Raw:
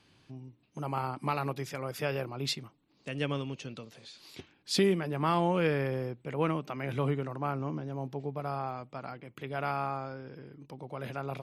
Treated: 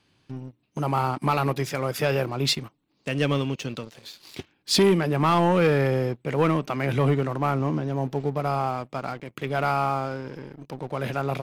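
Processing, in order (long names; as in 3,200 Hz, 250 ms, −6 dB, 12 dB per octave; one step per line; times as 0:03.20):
leveller curve on the samples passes 2
level +2.5 dB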